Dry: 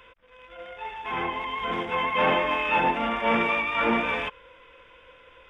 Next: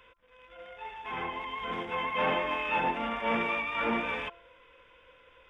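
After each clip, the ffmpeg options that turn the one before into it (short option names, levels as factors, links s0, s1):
-af "bandreject=f=342.6:t=h:w=4,bandreject=f=685.2:t=h:w=4,bandreject=f=1027.8:t=h:w=4,bandreject=f=1370.4:t=h:w=4,volume=0.501"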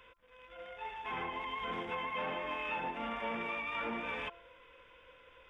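-af "acompressor=threshold=0.02:ratio=6,volume=0.891"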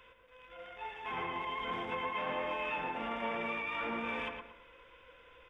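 -filter_complex "[0:a]asplit=2[s0][s1];[s1]adelay=113,lowpass=f=2300:p=1,volume=0.631,asplit=2[s2][s3];[s3]adelay=113,lowpass=f=2300:p=1,volume=0.37,asplit=2[s4][s5];[s5]adelay=113,lowpass=f=2300:p=1,volume=0.37,asplit=2[s6][s7];[s7]adelay=113,lowpass=f=2300:p=1,volume=0.37,asplit=2[s8][s9];[s9]adelay=113,lowpass=f=2300:p=1,volume=0.37[s10];[s0][s2][s4][s6][s8][s10]amix=inputs=6:normalize=0"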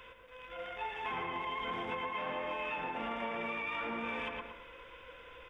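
-af "acompressor=threshold=0.00891:ratio=6,volume=2"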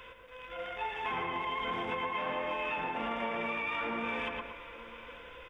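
-af "aecho=1:1:893:0.126,volume=1.41"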